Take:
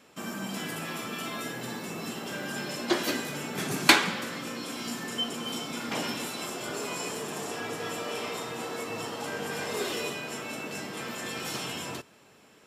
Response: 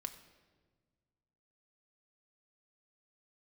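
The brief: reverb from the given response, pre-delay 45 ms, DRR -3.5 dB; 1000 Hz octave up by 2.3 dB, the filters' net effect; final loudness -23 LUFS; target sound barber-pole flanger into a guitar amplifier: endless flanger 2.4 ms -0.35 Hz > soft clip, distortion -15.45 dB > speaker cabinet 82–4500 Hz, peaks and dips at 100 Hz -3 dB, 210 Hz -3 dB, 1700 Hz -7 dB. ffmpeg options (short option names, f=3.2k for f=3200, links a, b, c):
-filter_complex "[0:a]equalizer=f=1k:t=o:g=3.5,asplit=2[a][b];[1:a]atrim=start_sample=2205,adelay=45[c];[b][c]afir=irnorm=-1:irlink=0,volume=6dB[d];[a][d]amix=inputs=2:normalize=0,asplit=2[e][f];[f]adelay=2.4,afreqshift=-0.35[g];[e][g]amix=inputs=2:normalize=1,asoftclip=threshold=-10dB,highpass=82,equalizer=f=100:t=q:w=4:g=-3,equalizer=f=210:t=q:w=4:g=-3,equalizer=f=1.7k:t=q:w=4:g=-7,lowpass=f=4.5k:w=0.5412,lowpass=f=4.5k:w=1.3066,volume=8dB"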